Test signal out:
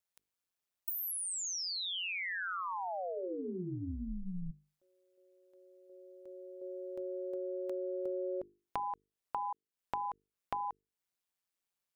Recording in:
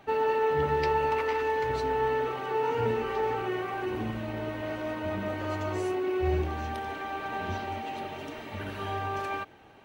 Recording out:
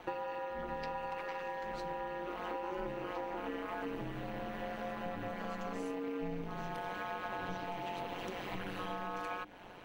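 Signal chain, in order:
ring modulation 91 Hz
downward compressor 6 to 1, threshold −42 dBFS
mains-hum notches 50/100/150/200/250/300/350/400/450 Hz
level +5.5 dB

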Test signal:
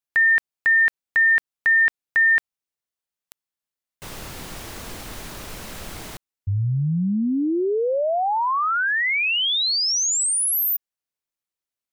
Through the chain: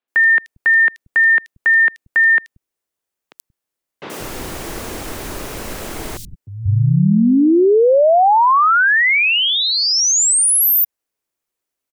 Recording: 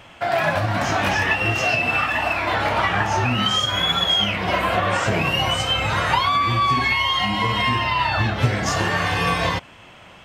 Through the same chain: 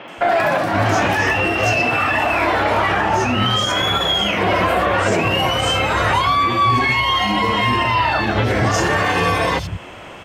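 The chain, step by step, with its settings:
parametric band 370 Hz +5.5 dB 1.4 octaves
in parallel at −2 dB: speech leveller 0.5 s
on the sum: brickwall limiter −11 dBFS
three-band delay without the direct sound mids, highs, lows 80/180 ms, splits 160/3,900 Hz
level +3 dB

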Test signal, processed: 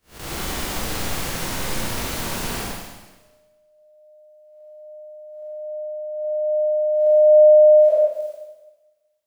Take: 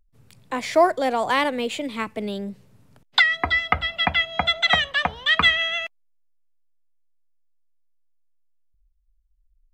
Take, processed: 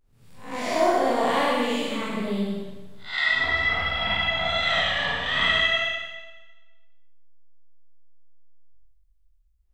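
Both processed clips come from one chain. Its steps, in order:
spectrum smeared in time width 177 ms
four-comb reverb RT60 1.2 s, combs from 33 ms, DRR −3.5 dB
level −1 dB

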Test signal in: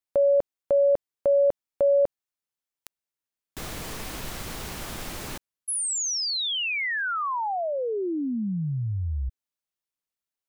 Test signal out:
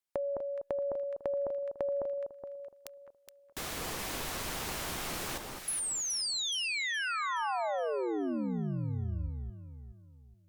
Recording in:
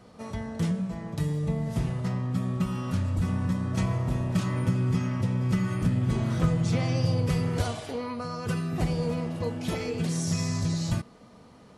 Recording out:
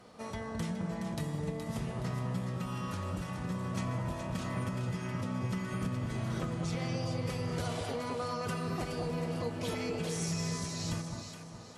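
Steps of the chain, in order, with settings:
low-shelf EQ 280 Hz −8.5 dB
downward compressor 10 to 1, threshold −33 dBFS
on a send: delay that swaps between a low-pass and a high-pass 210 ms, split 1,300 Hz, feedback 61%, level −2.5 dB
on the sum: Opus 96 kbit/s 48,000 Hz

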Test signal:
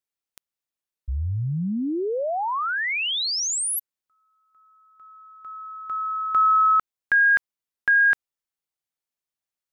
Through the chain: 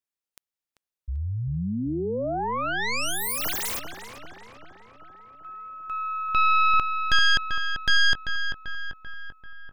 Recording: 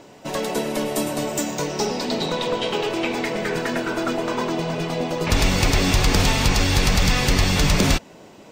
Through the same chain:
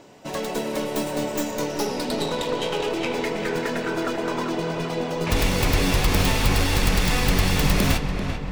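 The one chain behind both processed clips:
stylus tracing distortion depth 0.26 ms
feedback echo with a low-pass in the loop 390 ms, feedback 62%, low-pass 2,900 Hz, level −7 dB
level −3 dB

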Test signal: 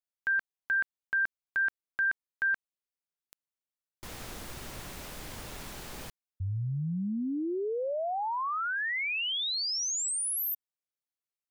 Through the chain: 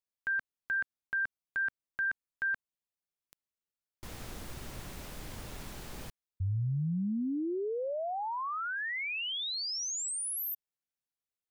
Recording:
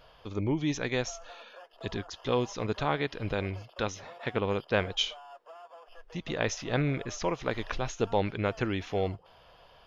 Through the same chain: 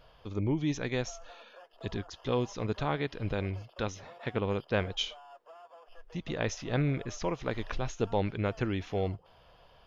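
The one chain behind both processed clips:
low-shelf EQ 320 Hz +5.5 dB
level −4 dB

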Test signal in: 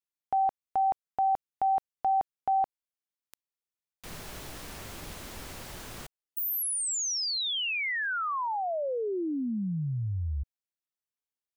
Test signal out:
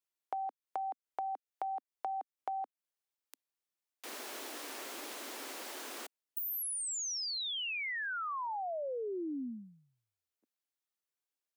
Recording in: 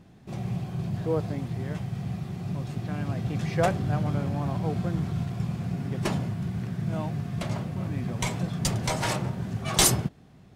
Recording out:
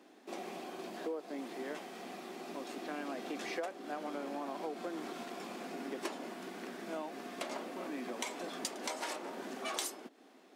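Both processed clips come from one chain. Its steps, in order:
Butterworth high-pass 260 Hz 48 dB per octave
downward compressor 10 to 1, threshold −36 dBFS

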